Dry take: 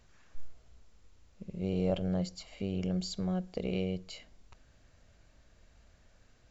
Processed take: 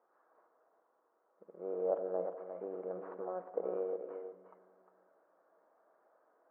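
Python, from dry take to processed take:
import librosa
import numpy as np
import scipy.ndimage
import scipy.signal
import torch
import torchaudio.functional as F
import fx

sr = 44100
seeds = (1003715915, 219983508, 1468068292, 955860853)

p1 = fx.cvsd(x, sr, bps=32000)
p2 = scipy.signal.sosfilt(scipy.signal.butter(6, 1300.0, 'lowpass', fs=sr, output='sos'), p1)
p3 = fx.rider(p2, sr, range_db=10, speed_s=2.0)
p4 = scipy.signal.sosfilt(scipy.signal.butter(4, 410.0, 'highpass', fs=sr, output='sos'), p3)
p5 = p4 + fx.echo_single(p4, sr, ms=354, db=-8.0, dry=0)
p6 = fx.room_shoebox(p5, sr, seeds[0], volume_m3=2900.0, walls='mixed', distance_m=0.62)
y = p6 * librosa.db_to_amplitude(2.0)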